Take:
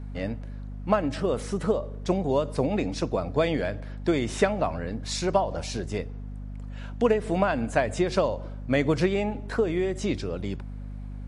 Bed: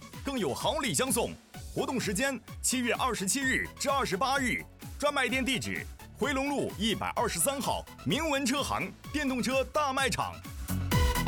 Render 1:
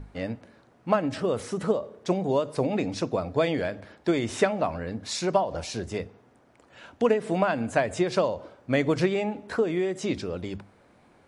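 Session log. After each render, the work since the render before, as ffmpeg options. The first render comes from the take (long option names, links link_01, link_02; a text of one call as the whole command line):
ffmpeg -i in.wav -af "bandreject=frequency=50:width_type=h:width=6,bandreject=frequency=100:width_type=h:width=6,bandreject=frequency=150:width_type=h:width=6,bandreject=frequency=200:width_type=h:width=6,bandreject=frequency=250:width_type=h:width=6" out.wav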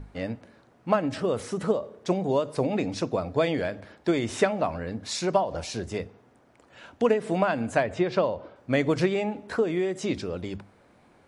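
ffmpeg -i in.wav -filter_complex "[0:a]asettb=1/sr,asplit=3[link_01][link_02][link_03];[link_01]atrim=end=7.834[link_04];[link_02]atrim=start=7.83:end=8.56,asetpts=PTS-STARTPTS,afade=type=in:duration=0.004:curve=qsin,afade=type=out:start_time=0.726:duration=0.004:curve=qsin,lowpass=3700[link_05];[link_03]atrim=start=8.556[link_06];[link_04][link_05]acrossfade=duration=0.004:curve1=hsin:curve2=qsin[link_07];[link_07][link_06]acrossfade=duration=0.004:curve1=qsin:curve2=hsin" out.wav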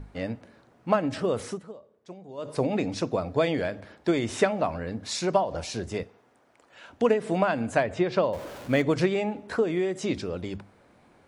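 ffmpeg -i in.wav -filter_complex "[0:a]asettb=1/sr,asplit=3[link_01][link_02][link_03];[link_01]atrim=end=6.034[link_04];[link_02]atrim=start=6.03:end=6.9,asetpts=PTS-STARTPTS,afade=type=in:duration=0.004:curve=qsin,afade=type=out:start_time=0.866:duration=0.004:curve=qsin,lowshelf=frequency=280:gain=-11.5[link_05];[link_03]atrim=start=6.896[link_06];[link_04][link_05]acrossfade=duration=0.004:curve1=hsin:curve2=qsin[link_07];[link_07][link_06]acrossfade=duration=0.004:curve1=qsin:curve2=hsin,asettb=1/sr,asplit=3[link_08][link_09][link_10];[link_08]atrim=end=8.334[link_11];[link_09]atrim=start=8.33:end=8.82,asetpts=PTS-STARTPTS,afade=type=in:duration=0.004:curve=qsin,afade=type=out:start_time=0.486:duration=0.004:curve=qsin,aeval=exprs='val(0)+0.5*0.0133*sgn(val(0))':channel_layout=same[link_12];[link_10]atrim=start=8.816[link_13];[link_11][link_12]acrossfade=duration=0.004:curve1=hsin:curve2=qsin[link_14];[link_14][link_13]acrossfade=duration=0.004:curve1=qsin:curve2=hsin,asplit=3[link_15][link_16][link_17];[link_15]atrim=end=1.62,asetpts=PTS-STARTPTS,afade=type=out:start_time=1.5:duration=0.12:silence=0.125893[link_18];[link_16]atrim=start=1.62:end=2.37,asetpts=PTS-STARTPTS,volume=-18dB[link_19];[link_17]atrim=start=2.37,asetpts=PTS-STARTPTS,afade=type=in:duration=0.12:silence=0.125893[link_20];[link_18][link_19][link_20]concat=n=3:v=0:a=1" out.wav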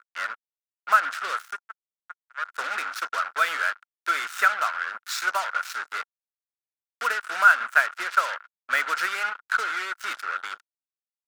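ffmpeg -i in.wav -af "acrusher=bits=4:mix=0:aa=0.5,highpass=frequency=1400:width_type=q:width=10" out.wav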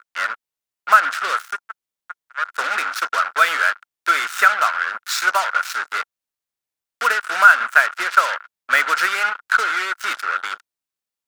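ffmpeg -i in.wav -af "volume=7.5dB,alimiter=limit=-1dB:level=0:latency=1" out.wav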